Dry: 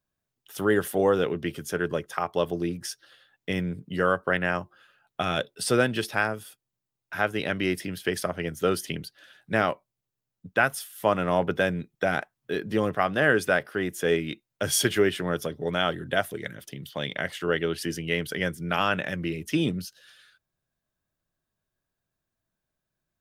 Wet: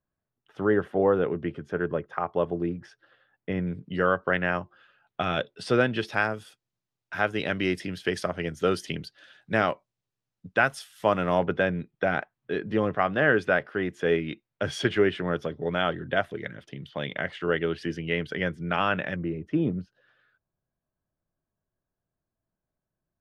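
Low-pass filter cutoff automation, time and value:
1,600 Hz
from 0:03.67 3,600 Hz
from 0:06.07 6,100 Hz
from 0:11.46 2,900 Hz
from 0:19.16 1,100 Hz

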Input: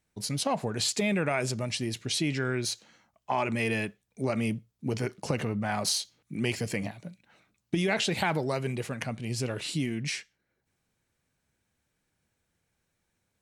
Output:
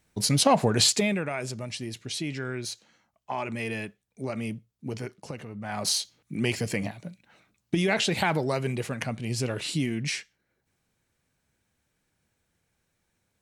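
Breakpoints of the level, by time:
0:00.83 +8.5 dB
0:01.26 −3.5 dB
0:04.96 −3.5 dB
0:05.47 −10.5 dB
0:05.92 +2.5 dB

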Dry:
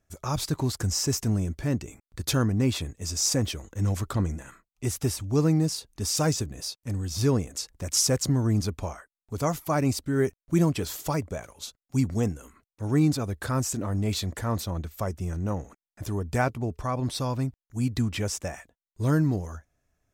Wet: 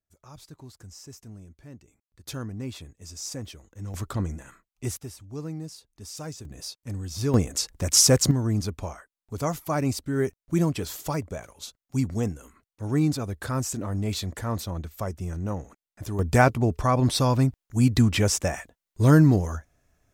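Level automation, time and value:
−18.5 dB
from 0:02.26 −10.5 dB
from 0:03.94 −2 dB
from 0:04.97 −12.5 dB
from 0:06.45 −3 dB
from 0:07.34 +6 dB
from 0:08.31 −1 dB
from 0:16.19 +7 dB

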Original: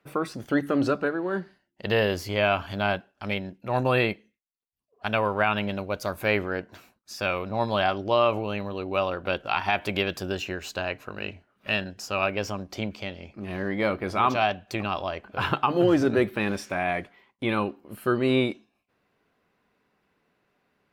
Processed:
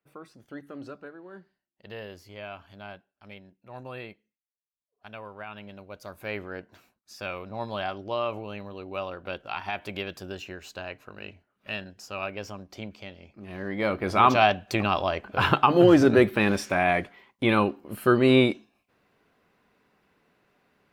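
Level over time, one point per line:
0:05.46 −17 dB
0:06.59 −7.5 dB
0:13.44 −7.5 dB
0:14.21 +4 dB

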